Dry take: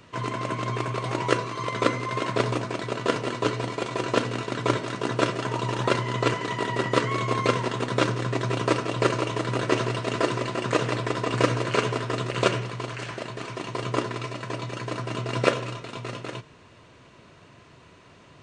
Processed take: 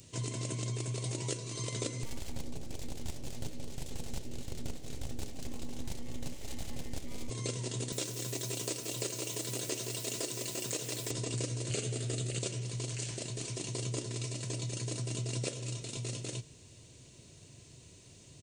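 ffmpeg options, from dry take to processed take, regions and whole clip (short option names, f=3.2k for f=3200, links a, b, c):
-filter_complex "[0:a]asettb=1/sr,asplit=3[a][b][c];[a]atrim=end=2.034[d];[b]atrim=start=2.03:end=7.3,asetpts=PTS-STARTPTS,afade=t=in:d=0.004:c=qsin,afade=t=out:st=5.266:d=0.004:c=qsin,aemphasis=mode=reproduction:type=bsi,aeval=exprs='abs(val(0))':c=same[e];[c]atrim=start=7.296[f];[d][e]acrossfade=d=0.004:c1=hsin:c2=qsin[g];[g][f]acrossfade=d=0.004:c1=qsin:c2=hsin,asettb=1/sr,asplit=3[h][i][j];[h]atrim=end=7.924[k];[i]atrim=start=7.92:end=11.11,asetpts=PTS-STARTPTS,afade=t=in:d=0.004:c=qsin,afade=t=out:st=3.186:d=0.004:c=qsin,highpass=f=390:p=1,acrusher=bits=9:dc=4:mix=0:aa=0.000001[l];[j]atrim=start=11.106[m];[k][l]acrossfade=d=0.004:c1=hsin:c2=qsin[n];[n][m]acrossfade=d=0.004:c1=qsin:c2=hsin,asettb=1/sr,asplit=3[o][p][q];[o]atrim=end=11.704[r];[p]atrim=start=11.7:end=12.39,asetpts=PTS-STARTPTS,afade=t=in:d=0.004:c=qsin,afade=t=out:st=0.686:d=0.004:c=qsin,equalizer=f=5.5k:w=5.2:g=-6.5,acontrast=45,asuperstop=centerf=1000:order=4:qfactor=6.7[s];[q]atrim=start=12.386[t];[r][s]acrossfade=d=0.004:c1=hsin:c2=qsin[u];[u][t]acrossfade=d=0.004:c1=qsin:c2=hsin,firequalizer=gain_entry='entry(130,0);entry(180,-6);entry(360,-6);entry(1200,-22);entry(2200,-10);entry(3800,-1);entry(7300,12)':delay=0.05:min_phase=1,acompressor=threshold=-33dB:ratio=6"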